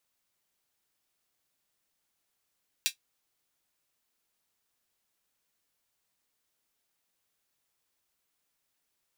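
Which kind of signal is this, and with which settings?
closed hi-hat, high-pass 2.9 kHz, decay 0.11 s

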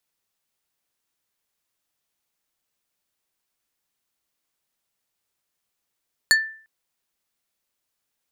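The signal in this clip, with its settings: wood hit plate, length 0.35 s, lowest mode 1.77 kHz, decay 0.46 s, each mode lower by 3 dB, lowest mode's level -11 dB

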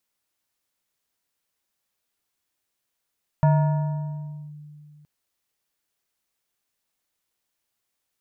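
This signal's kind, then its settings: FM tone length 1.62 s, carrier 149 Hz, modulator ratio 5.29, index 0.6, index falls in 1.10 s linear, decay 2.68 s, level -13 dB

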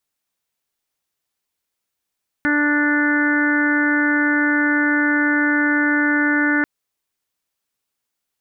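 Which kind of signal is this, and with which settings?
steady additive tone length 4.19 s, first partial 294 Hz, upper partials -13/-12.5/-14/-2/-3/-10.5 dB, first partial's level -18 dB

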